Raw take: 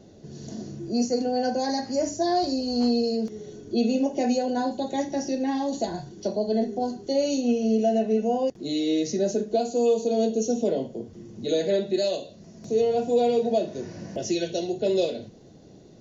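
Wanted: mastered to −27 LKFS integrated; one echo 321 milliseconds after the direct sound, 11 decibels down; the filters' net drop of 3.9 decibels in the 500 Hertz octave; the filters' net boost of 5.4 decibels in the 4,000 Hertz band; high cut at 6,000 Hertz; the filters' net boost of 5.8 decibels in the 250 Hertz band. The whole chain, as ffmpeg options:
ffmpeg -i in.wav -af "lowpass=6000,equalizer=frequency=250:width_type=o:gain=8,equalizer=frequency=500:width_type=o:gain=-7,equalizer=frequency=4000:width_type=o:gain=7,aecho=1:1:321:0.282,volume=-4dB" out.wav

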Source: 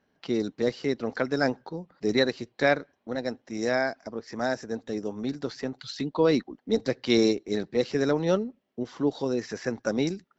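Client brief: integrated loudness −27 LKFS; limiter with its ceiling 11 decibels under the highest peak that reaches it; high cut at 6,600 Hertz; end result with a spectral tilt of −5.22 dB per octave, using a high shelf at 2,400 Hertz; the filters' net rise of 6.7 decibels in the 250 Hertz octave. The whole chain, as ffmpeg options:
ffmpeg -i in.wav -af "lowpass=6600,equalizer=frequency=250:width_type=o:gain=8,highshelf=frequency=2400:gain=3.5,volume=1.5dB,alimiter=limit=-15dB:level=0:latency=1" out.wav

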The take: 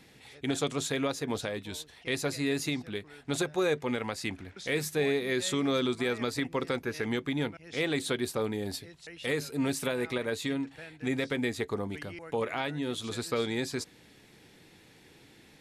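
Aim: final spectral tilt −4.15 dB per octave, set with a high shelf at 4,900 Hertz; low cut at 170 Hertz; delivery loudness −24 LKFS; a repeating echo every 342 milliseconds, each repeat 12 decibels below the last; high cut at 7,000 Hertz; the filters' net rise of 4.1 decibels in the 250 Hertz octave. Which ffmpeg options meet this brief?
ffmpeg -i in.wav -af "highpass=170,lowpass=7000,equalizer=frequency=250:width_type=o:gain=5.5,highshelf=frequency=4900:gain=5,aecho=1:1:342|684|1026:0.251|0.0628|0.0157,volume=6dB" out.wav

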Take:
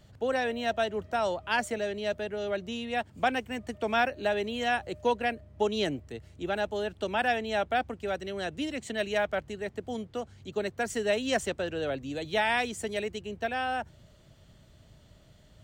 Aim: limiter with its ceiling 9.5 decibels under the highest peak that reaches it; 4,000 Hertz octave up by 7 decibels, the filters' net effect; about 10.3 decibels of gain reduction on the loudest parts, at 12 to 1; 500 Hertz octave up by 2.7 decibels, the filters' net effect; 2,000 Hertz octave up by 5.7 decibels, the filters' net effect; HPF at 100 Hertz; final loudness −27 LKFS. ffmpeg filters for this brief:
ffmpeg -i in.wav -af "highpass=100,equalizer=frequency=500:width_type=o:gain=3,equalizer=frequency=2000:width_type=o:gain=5.5,equalizer=frequency=4000:width_type=o:gain=7,acompressor=threshold=-28dB:ratio=12,volume=8.5dB,alimiter=limit=-17dB:level=0:latency=1" out.wav

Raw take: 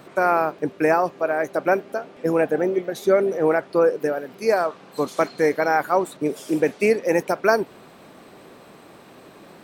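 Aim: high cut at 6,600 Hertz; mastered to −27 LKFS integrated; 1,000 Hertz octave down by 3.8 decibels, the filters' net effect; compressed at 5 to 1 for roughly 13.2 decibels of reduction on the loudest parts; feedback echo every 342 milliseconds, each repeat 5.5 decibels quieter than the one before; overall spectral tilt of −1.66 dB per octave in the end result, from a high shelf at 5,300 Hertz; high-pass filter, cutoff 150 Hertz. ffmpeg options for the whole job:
ffmpeg -i in.wav -af "highpass=150,lowpass=6600,equalizer=frequency=1000:width_type=o:gain=-5.5,highshelf=frequency=5300:gain=-5.5,acompressor=threshold=-30dB:ratio=5,aecho=1:1:342|684|1026|1368|1710|2052|2394:0.531|0.281|0.149|0.079|0.0419|0.0222|0.0118,volume=6dB" out.wav

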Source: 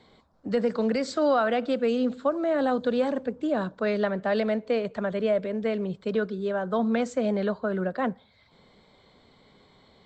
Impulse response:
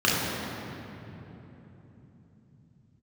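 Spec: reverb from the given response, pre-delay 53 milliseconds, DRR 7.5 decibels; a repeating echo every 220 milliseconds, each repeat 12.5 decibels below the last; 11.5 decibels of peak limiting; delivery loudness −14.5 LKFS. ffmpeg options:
-filter_complex "[0:a]alimiter=level_in=2.5dB:limit=-24dB:level=0:latency=1,volume=-2.5dB,aecho=1:1:220|440|660:0.237|0.0569|0.0137,asplit=2[link_01][link_02];[1:a]atrim=start_sample=2205,adelay=53[link_03];[link_02][link_03]afir=irnorm=-1:irlink=0,volume=-25.5dB[link_04];[link_01][link_04]amix=inputs=2:normalize=0,volume=18.5dB"

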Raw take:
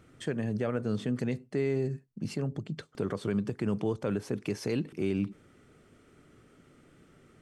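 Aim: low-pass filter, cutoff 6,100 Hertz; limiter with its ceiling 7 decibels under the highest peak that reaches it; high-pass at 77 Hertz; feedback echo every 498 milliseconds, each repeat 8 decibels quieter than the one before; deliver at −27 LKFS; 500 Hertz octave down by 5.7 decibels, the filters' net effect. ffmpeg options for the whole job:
ffmpeg -i in.wav -af "highpass=77,lowpass=6100,equalizer=frequency=500:width_type=o:gain=-7.5,alimiter=level_in=4.5dB:limit=-24dB:level=0:latency=1,volume=-4.5dB,aecho=1:1:498|996|1494|1992|2490:0.398|0.159|0.0637|0.0255|0.0102,volume=11.5dB" out.wav

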